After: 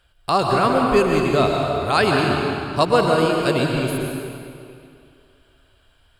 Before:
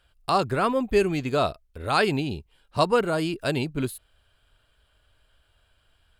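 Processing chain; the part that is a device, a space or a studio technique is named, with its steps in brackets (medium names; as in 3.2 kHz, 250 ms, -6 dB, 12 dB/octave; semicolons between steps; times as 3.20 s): stairwell (reverberation RT60 2.5 s, pre-delay 110 ms, DRR 0 dB); trim +3.5 dB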